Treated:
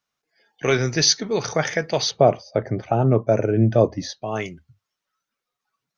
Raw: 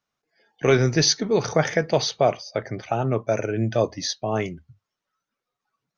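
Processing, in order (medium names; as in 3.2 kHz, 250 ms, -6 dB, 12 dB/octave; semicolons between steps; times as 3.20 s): tilt shelf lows -3 dB, about 1.2 kHz, from 2.10 s lows +7 dB, from 4.21 s lows -3.5 dB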